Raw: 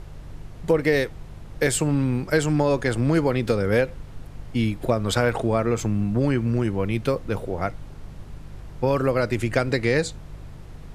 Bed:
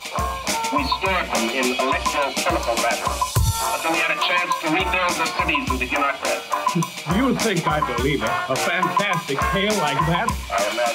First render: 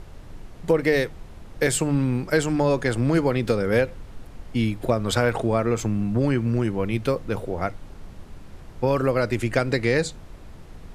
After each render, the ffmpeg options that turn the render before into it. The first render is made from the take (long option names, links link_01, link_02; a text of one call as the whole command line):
ffmpeg -i in.wav -af "bandreject=frequency=50:width_type=h:width=4,bandreject=frequency=100:width_type=h:width=4,bandreject=frequency=150:width_type=h:width=4" out.wav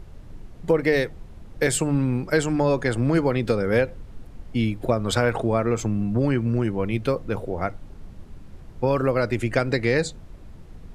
ffmpeg -i in.wav -af "afftdn=noise_reduction=6:noise_floor=-43" out.wav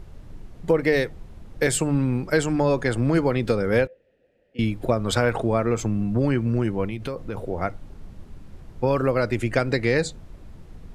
ffmpeg -i in.wav -filter_complex "[0:a]asettb=1/sr,asplit=3[link_01][link_02][link_03];[link_01]atrim=end=3.874[link_04];[link_02]atrim=start=3.87:end=4.59,asetpts=PTS-STARTPTS,afade=type=in:duration=0.004:curve=qsin,afade=type=out:start_time=0.716:duration=0.004:curve=qsin,asplit=3[link_05][link_06][link_07];[link_05]bandpass=frequency=530:width_type=q:width=8,volume=0dB[link_08];[link_06]bandpass=frequency=1840:width_type=q:width=8,volume=-6dB[link_09];[link_07]bandpass=frequency=2480:width_type=q:width=8,volume=-9dB[link_10];[link_08][link_09][link_10]amix=inputs=3:normalize=0[link_11];[link_03]atrim=start=4.586[link_12];[link_04][link_11]acrossfade=duration=0.004:curve1=hsin:curve2=qsin[link_13];[link_13][link_12]acrossfade=duration=0.004:curve1=qsin:curve2=hsin,asettb=1/sr,asplit=3[link_14][link_15][link_16];[link_14]atrim=end=6.854[link_17];[link_15]atrim=start=6.85:end=7.38,asetpts=PTS-STARTPTS,afade=type=in:duration=0.004:curve=qsin,afade=type=out:start_time=0.526:duration=0.004:curve=qsin,acompressor=threshold=-25dB:ratio=6:attack=3.2:release=140:knee=1:detection=peak[link_18];[link_16]atrim=start=7.376[link_19];[link_17][link_18]acrossfade=duration=0.004:curve1=hsin:curve2=qsin[link_20];[link_20][link_19]acrossfade=duration=0.004:curve1=qsin:curve2=hsin" out.wav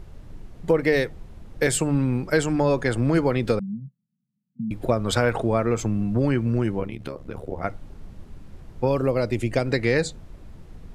ffmpeg -i in.wav -filter_complex "[0:a]asettb=1/sr,asplit=3[link_01][link_02][link_03];[link_01]atrim=end=3.594[link_04];[link_02]atrim=start=3.59:end=4.71,asetpts=PTS-STARTPTS,afade=type=in:duration=0.004:curve=qsin,afade=type=out:start_time=1.116:duration=0.004:curve=qsin,asuperpass=centerf=170:order=8:qfactor=1.9[link_05];[link_03]atrim=start=4.706[link_06];[link_04][link_05]acrossfade=duration=0.004:curve1=hsin:curve2=qsin[link_07];[link_07][link_06]acrossfade=duration=0.004:curve1=qsin:curve2=hsin,asplit=3[link_08][link_09][link_10];[link_08]afade=type=out:start_time=6.79:duration=0.02[link_11];[link_09]tremolo=f=72:d=0.857,afade=type=in:start_time=6.79:duration=0.02,afade=type=out:start_time=7.64:duration=0.02[link_12];[link_10]afade=type=in:start_time=7.64:duration=0.02[link_13];[link_11][link_12][link_13]amix=inputs=3:normalize=0,asettb=1/sr,asplit=3[link_14][link_15][link_16];[link_14]atrim=end=8.884[link_17];[link_15]atrim=start=8.88:end=9.66,asetpts=PTS-STARTPTS,afade=type=in:duration=0.004:curve=qsin,afade=type=out:start_time=0.776:duration=0.004:curve=qsin,equalizer=frequency=1500:width=1.6:gain=-8.5[link_18];[link_16]atrim=start=9.656[link_19];[link_17][link_18]acrossfade=duration=0.004:curve1=hsin:curve2=qsin[link_20];[link_20][link_19]acrossfade=duration=0.004:curve1=qsin:curve2=hsin" out.wav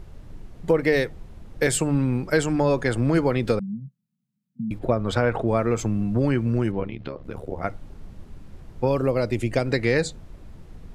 ffmpeg -i in.wav -filter_complex "[0:a]asplit=3[link_01][link_02][link_03];[link_01]afade=type=out:start_time=4.78:duration=0.02[link_04];[link_02]lowpass=frequency=2300:poles=1,afade=type=in:start_time=4.78:duration=0.02,afade=type=out:start_time=5.47:duration=0.02[link_05];[link_03]afade=type=in:start_time=5.47:duration=0.02[link_06];[link_04][link_05][link_06]amix=inputs=3:normalize=0,asplit=3[link_07][link_08][link_09];[link_07]afade=type=out:start_time=6.71:duration=0.02[link_10];[link_08]lowpass=frequency=4500:width=0.5412,lowpass=frequency=4500:width=1.3066,afade=type=in:start_time=6.71:duration=0.02,afade=type=out:start_time=7.23:duration=0.02[link_11];[link_09]afade=type=in:start_time=7.23:duration=0.02[link_12];[link_10][link_11][link_12]amix=inputs=3:normalize=0" out.wav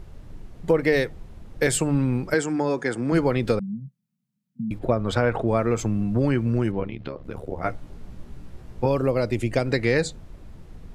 ffmpeg -i in.wav -filter_complex "[0:a]asettb=1/sr,asplit=3[link_01][link_02][link_03];[link_01]atrim=end=2.344[link_04];[link_02]atrim=start=2.34:end=3.12,asetpts=PTS-STARTPTS,afade=type=in:duration=0.004:curve=qsin,afade=type=out:start_time=0.776:duration=0.004:curve=qsin,highpass=210,equalizer=frequency=600:width_type=q:width=4:gain=-7,equalizer=frequency=1100:width_type=q:width=4:gain=-4,equalizer=frequency=2800:width_type=q:width=4:gain=-7,equalizer=frequency=4000:width_type=q:width=4:gain=-6,lowpass=frequency=9500:width=0.5412,lowpass=frequency=9500:width=1.3066[link_05];[link_03]atrim=start=3.116[link_06];[link_04][link_05]acrossfade=duration=0.004:curve1=hsin:curve2=qsin[link_07];[link_07][link_06]acrossfade=duration=0.004:curve1=qsin:curve2=hsin,asettb=1/sr,asplit=3[link_08][link_09][link_10];[link_08]atrim=end=7.624[link_11];[link_09]atrim=start=7.62:end=8.86,asetpts=PTS-STARTPTS,afade=type=in:duration=0.004:curve=qsin,afade=type=out:start_time=1.236:duration=0.004:curve=qsin,asplit=2[link_12][link_13];[link_13]adelay=17,volume=-3dB[link_14];[link_12][link_14]amix=inputs=2:normalize=0,atrim=end_sample=54684[link_15];[link_10]atrim=start=8.856[link_16];[link_11][link_15]acrossfade=duration=0.004:curve1=hsin:curve2=qsin[link_17];[link_17][link_16]acrossfade=duration=0.004:curve1=qsin:curve2=hsin" out.wav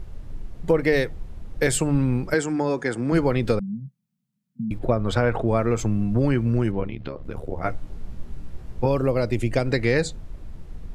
ffmpeg -i in.wav -af "lowshelf=frequency=61:gain=8.5" out.wav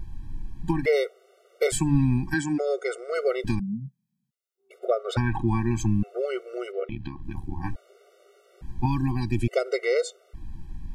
ffmpeg -i in.wav -af "afftfilt=real='re*gt(sin(2*PI*0.58*pts/sr)*(1-2*mod(floor(b*sr/1024/380),2)),0)':imag='im*gt(sin(2*PI*0.58*pts/sr)*(1-2*mod(floor(b*sr/1024/380),2)),0)':win_size=1024:overlap=0.75" out.wav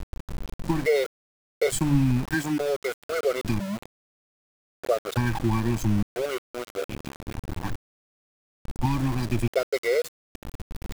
ffmpeg -i in.wav -af "aeval=exprs='val(0)*gte(abs(val(0)),0.0316)':channel_layout=same" out.wav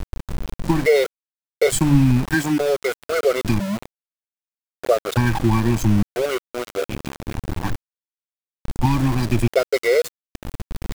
ffmpeg -i in.wav -af "volume=6.5dB" out.wav